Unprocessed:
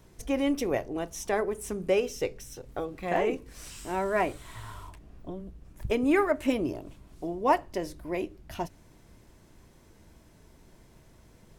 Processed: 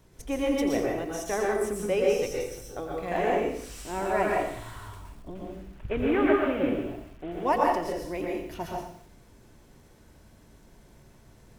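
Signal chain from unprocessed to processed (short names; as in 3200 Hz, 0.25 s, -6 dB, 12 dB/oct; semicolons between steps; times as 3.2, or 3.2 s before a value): 5.35–7.42 CVSD 16 kbps; plate-style reverb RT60 0.59 s, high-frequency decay 0.9×, pre-delay 0.105 s, DRR -2 dB; lo-fi delay 88 ms, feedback 35%, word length 8-bit, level -11 dB; gain -2.5 dB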